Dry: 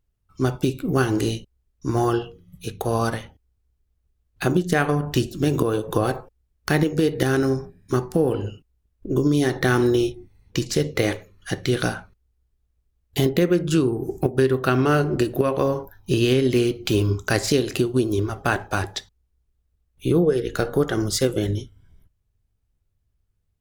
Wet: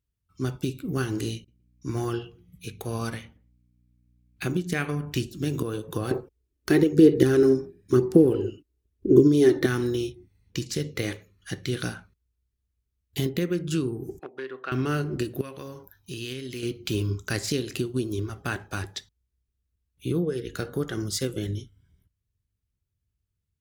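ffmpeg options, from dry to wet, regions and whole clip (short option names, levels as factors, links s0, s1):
-filter_complex "[0:a]asettb=1/sr,asplit=3[s0][s1][s2];[s0]atrim=end=1.364[s3];[s1]atrim=start=1.36:end=5.25,asetpts=PTS-STARTPTS,afade=t=in:d=0.004:c=qsin,afade=t=out:st=3.886:d=0.004:c=qsin,aeval=exprs='val(0)+0.00158*(sin(2*PI*60*n/s)+sin(2*PI*2*60*n/s)/2+sin(2*PI*3*60*n/s)/3+sin(2*PI*4*60*n/s)/4+sin(2*PI*5*60*n/s)/5)':c=same,equalizer=f=2300:t=o:w=0.22:g=9,asplit=2[s4][s5];[s5]adelay=118,lowpass=f=1200:p=1,volume=0.0631,asplit=2[s6][s7];[s7]adelay=118,lowpass=f=1200:p=1,volume=0.39[s8];[s4][s6][s8]amix=inputs=3:normalize=0,atrim=end_sample=171549[s9];[s2]atrim=start=5.246[s10];[s3][s9]acrossfade=d=0.004:c1=hsin:c2=qsin[s11];[s11][s10]acrossfade=d=0.004:c1=qsin:c2=hsin,asettb=1/sr,asplit=3[s12][s13][s14];[s12]atrim=end=6.114[s15];[s13]atrim=start=6.11:end=9.66,asetpts=PTS-STARTPTS,afade=t=in:d=0.004:c=qsin,afade=t=out:st=3.546:d=0.004:c=qsin,equalizer=f=370:w=1.3:g=13.5,aphaser=in_gain=1:out_gain=1:delay=3.4:decay=0.41:speed=1:type=sinusoidal[s16];[s14]atrim=start=9.656[s17];[s15][s16]acrossfade=d=0.004:c1=hsin:c2=qsin[s18];[s18][s17]acrossfade=d=0.004:c1=qsin:c2=hsin,asettb=1/sr,asplit=3[s19][s20][s21];[s19]atrim=end=14.194[s22];[s20]atrim=start=14.19:end=14.72,asetpts=PTS-STARTPTS,afade=t=in:d=0.004:c=qsin,afade=t=out:st=0.526:d=0.004:c=qsin,volume=3.35,asoftclip=hard,volume=0.299,highpass=610,lowpass=2400[s23];[s21]atrim=start=14.716[s24];[s22][s23]acrossfade=d=0.004:c1=hsin:c2=qsin[s25];[s25][s24]acrossfade=d=0.004:c1=qsin:c2=hsin,asettb=1/sr,asplit=3[s26][s27][s28];[s26]atrim=end=15.414[s29];[s27]atrim=start=15.41:end=16.63,asetpts=PTS-STARTPTS,afade=t=in:d=0.004:c=qsin,afade=t=out:st=1.216:d=0.004:c=qsin,tiltshelf=f=1400:g=-4,acompressor=threshold=0.0158:ratio=1.5:attack=3.2:release=140:knee=1:detection=peak[s30];[s28]atrim=start=16.626[s31];[s29][s30]acrossfade=d=0.004:c1=hsin:c2=qsin[s32];[s32][s31]acrossfade=d=0.004:c1=qsin:c2=hsin,highpass=55,equalizer=f=720:t=o:w=1.5:g=-9,volume=0.562"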